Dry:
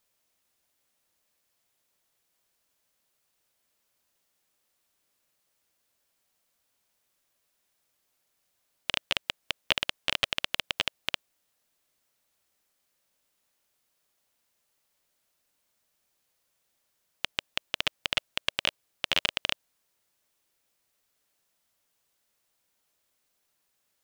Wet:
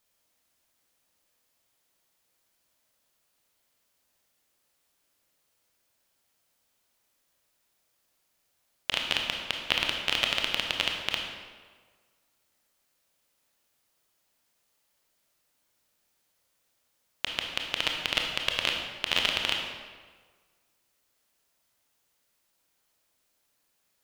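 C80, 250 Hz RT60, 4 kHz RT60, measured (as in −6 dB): 5.0 dB, 1.4 s, 1.1 s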